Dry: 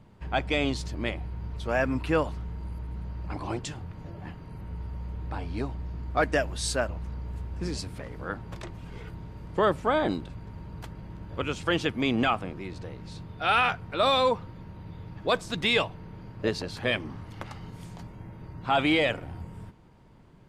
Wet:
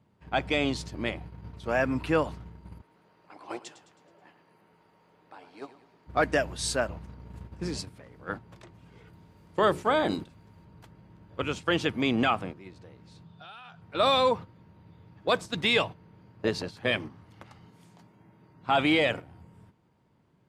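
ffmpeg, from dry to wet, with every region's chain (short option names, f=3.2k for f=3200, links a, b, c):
-filter_complex "[0:a]asettb=1/sr,asplit=3[a][b][c];[a]atrim=end=2.814[d];[b]atrim=start=2.81:end=6.07,asetpts=PTS-STARTPTS,afade=t=in:d=0.004:c=qsin,afade=t=out:st=3.256:d=0.004:c=qsin,highpass=400,aecho=1:1:107|214|321|428|535:0.316|0.152|0.0729|0.035|0.0168,atrim=end_sample=143766[e];[c]atrim=start=6.066[f];[d][e]acrossfade=d=0.004:c1=hsin:c2=qsin[g];[g][f]acrossfade=d=0.004:c1=qsin:c2=hsin,asettb=1/sr,asplit=3[h][i][j];[h]atrim=end=9.134[k];[i]atrim=start=9.13:end=10.65,asetpts=PTS-STARTPTS,afade=t=in:d=0.004:c=qsin,afade=t=out:st=1.516:d=0.004:c=qsin,highshelf=f=4.4k:g=8,bandreject=f=60:t=h:w=6,bandreject=f=120:t=h:w=6,bandreject=f=180:t=h:w=6,bandreject=f=240:t=h:w=6,bandreject=f=300:t=h:w=6,bandreject=f=360:t=h:w=6,bandreject=f=420:t=h:w=6,bandreject=f=480:t=h:w=6[l];[j]atrim=start=10.646[m];[k][l]acrossfade=d=0.004:c1=hsin:c2=qsin[n];[n][m]acrossfade=d=0.004:c1=qsin:c2=hsin,asettb=1/sr,asplit=3[o][p][q];[o]atrim=end=13.244[r];[p]atrim=start=13.24:end=13.82,asetpts=PTS-STARTPTS,afade=t=in:d=0.004:c=qsin,afade=t=out:st=0.576:d=0.004:c=qsin,acompressor=threshold=-33dB:ratio=8:attack=3.2:release=140:knee=1:detection=peak,highpass=100,equalizer=f=160:t=q:w=4:g=9,equalizer=f=290:t=q:w=4:g=-9,equalizer=f=480:t=q:w=4:g=-7,equalizer=f=2.1k:t=q:w=4:g=-9,equalizer=f=3.6k:t=q:w=4:g=6,lowpass=f=9.7k:w=0.5412,lowpass=f=9.7k:w=1.3066[s];[q]atrim=start=13.816[t];[r][s]acrossfade=d=0.004:c1=hsin:c2=qsin[u];[u][t]acrossfade=d=0.004:c1=qsin:c2=hsin,asettb=1/sr,asplit=3[v][w][x];[v]atrim=end=17.684[y];[w]atrim=start=17.68:end=18.61,asetpts=PTS-STARTPTS,afade=t=in:d=0.004:c=qsin,afade=t=out:st=0.926:d=0.004:c=qsin,highpass=150,bandreject=f=520:w=15[z];[x]atrim=start=18.606[aa];[y][z]acrossfade=d=0.004:c1=hsin:c2=qsin[ab];[ab][aa]acrossfade=d=0.004:c1=qsin:c2=hsin,agate=range=-10dB:threshold=-34dB:ratio=16:detection=peak,highpass=90"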